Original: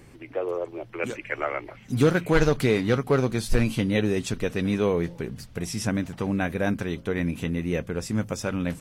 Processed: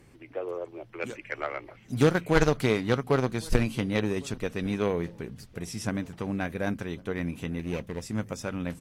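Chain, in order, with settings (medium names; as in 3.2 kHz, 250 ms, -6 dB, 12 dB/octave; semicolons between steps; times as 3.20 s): 7.59–8.02 s: comb filter that takes the minimum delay 0.31 ms; Chebyshev shaper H 3 -14 dB, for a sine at -7.5 dBFS; echo from a far wall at 190 m, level -24 dB; trim +2 dB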